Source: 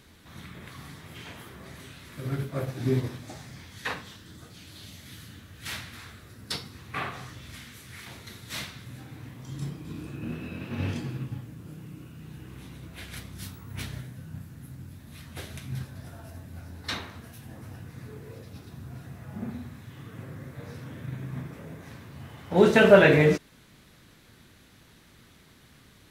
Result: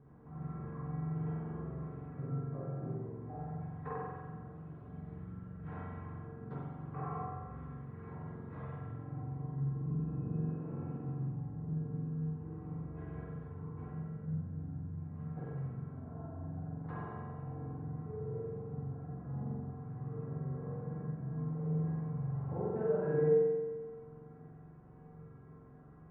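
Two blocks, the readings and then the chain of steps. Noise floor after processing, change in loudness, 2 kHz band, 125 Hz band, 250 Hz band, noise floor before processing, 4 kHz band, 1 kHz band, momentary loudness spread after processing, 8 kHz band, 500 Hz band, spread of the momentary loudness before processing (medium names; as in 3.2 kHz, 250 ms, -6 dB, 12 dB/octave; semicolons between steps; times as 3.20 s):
-54 dBFS, -12.0 dB, -25.5 dB, -3.0 dB, -8.0 dB, -56 dBFS, under -40 dB, -10.0 dB, 12 LU, under -30 dB, -10.5 dB, 17 LU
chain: low-pass 1.1 kHz 24 dB/octave; peaking EQ 270 Hz +3.5 dB 0.77 oct; compression 3:1, threshold -39 dBFS, peak gain reduction 21.5 dB; feedback comb 150 Hz, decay 0.2 s, harmonics odd, mix 90%; spring tank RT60 1.5 s, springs 44 ms, chirp 65 ms, DRR -5 dB; trim +7 dB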